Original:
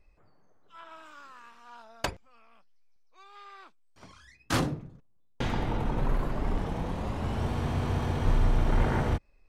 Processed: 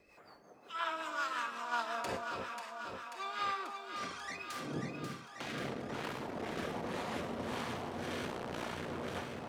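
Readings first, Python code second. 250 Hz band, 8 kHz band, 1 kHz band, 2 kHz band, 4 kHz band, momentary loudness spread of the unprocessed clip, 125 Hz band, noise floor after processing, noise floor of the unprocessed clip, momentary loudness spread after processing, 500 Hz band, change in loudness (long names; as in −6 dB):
−8.0 dB, −4.0 dB, −1.5 dB, 0.0 dB, −1.5 dB, 21 LU, −17.0 dB, −60 dBFS, −62 dBFS, 7 LU, −4.0 dB, −9.0 dB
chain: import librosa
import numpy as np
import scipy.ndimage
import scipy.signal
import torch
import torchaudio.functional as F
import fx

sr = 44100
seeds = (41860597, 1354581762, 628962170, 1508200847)

p1 = fx.rev_fdn(x, sr, rt60_s=0.36, lf_ratio=0.9, hf_ratio=0.85, size_ms=25.0, drr_db=11.5)
p2 = fx.harmonic_tremolo(p1, sr, hz=1.9, depth_pct=50, crossover_hz=660.0)
p3 = np.clip(10.0 ** (33.5 / 20.0) * p2, -1.0, 1.0) / 10.0 ** (33.5 / 20.0)
p4 = fx.rotary_switch(p3, sr, hz=5.5, then_hz=1.2, switch_at_s=3.09)
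p5 = fx.low_shelf(p4, sr, hz=310.0, db=-11.0)
p6 = fx.over_compress(p5, sr, threshold_db=-51.0, ratio=-1.0)
p7 = scipy.signal.sosfilt(scipy.signal.butter(2, 150.0, 'highpass', fs=sr, output='sos'), p6)
p8 = p7 + fx.echo_alternate(p7, sr, ms=269, hz=1000.0, feedback_pct=82, wet_db=-4.0, dry=0)
y = p8 * 10.0 ** (12.0 / 20.0)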